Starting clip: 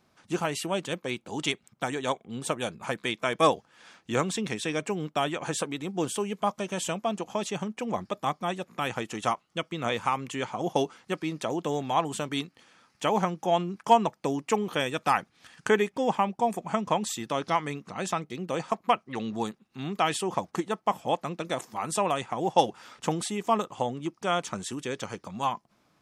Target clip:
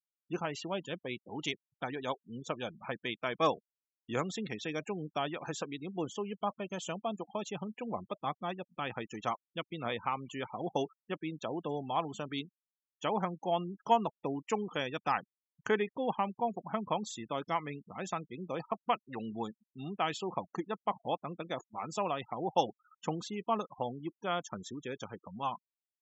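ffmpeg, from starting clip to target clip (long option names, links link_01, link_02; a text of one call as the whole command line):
ffmpeg -i in.wav -af "aresample=16000,aresample=44100,afftfilt=real='re*gte(hypot(re,im),0.0178)':imag='im*gte(hypot(re,im),0.0178)':win_size=1024:overlap=0.75,volume=-7dB" out.wav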